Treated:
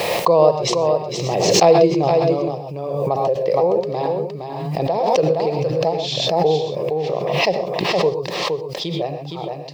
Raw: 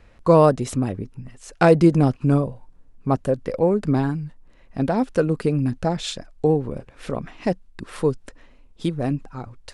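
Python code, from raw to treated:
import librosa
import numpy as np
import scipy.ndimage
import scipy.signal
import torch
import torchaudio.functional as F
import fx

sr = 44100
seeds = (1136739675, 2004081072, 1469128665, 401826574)

p1 = scipy.signal.sosfilt(scipy.signal.ellip(3, 1.0, 40, [150.0, 5100.0], 'bandpass', fs=sr, output='sos'), x)
p2 = fx.low_shelf(p1, sr, hz=200.0, db=-10.5)
p3 = fx.rider(p2, sr, range_db=10, speed_s=2.0)
p4 = p2 + (p3 * librosa.db_to_amplitude(-2.0))
p5 = fx.fixed_phaser(p4, sr, hz=610.0, stages=4)
p6 = fx.quant_dither(p5, sr, seeds[0], bits=12, dither='triangular')
p7 = p6 + fx.echo_single(p6, sr, ms=466, db=-5.0, dry=0)
p8 = fx.rev_gated(p7, sr, seeds[1], gate_ms=150, shape='rising', drr_db=5.5)
p9 = fx.pre_swell(p8, sr, db_per_s=29.0)
y = p9 * librosa.db_to_amplitude(-1.5)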